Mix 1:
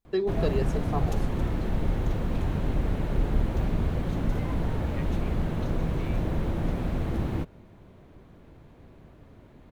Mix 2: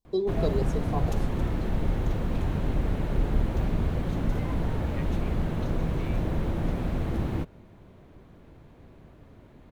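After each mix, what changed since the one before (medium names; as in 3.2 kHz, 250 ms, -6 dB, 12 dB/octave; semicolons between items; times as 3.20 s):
first voice: add Chebyshev band-stop 1.1–3.4 kHz, order 4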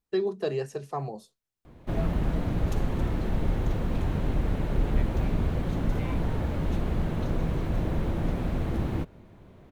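first voice: remove Chebyshev band-stop 1.1–3.4 kHz, order 4; background: entry +1.60 s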